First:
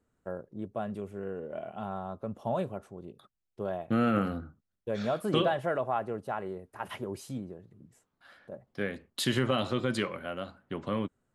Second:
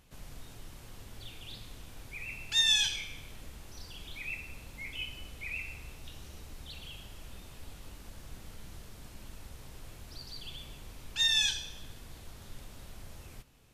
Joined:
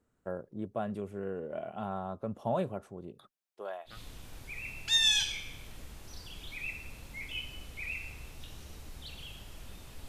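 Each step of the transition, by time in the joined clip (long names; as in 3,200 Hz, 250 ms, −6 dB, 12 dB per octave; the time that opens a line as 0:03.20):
first
0:03.29–0:03.99: high-pass filter 290 Hz → 1,500 Hz
0:03.92: continue with second from 0:01.56, crossfade 0.14 s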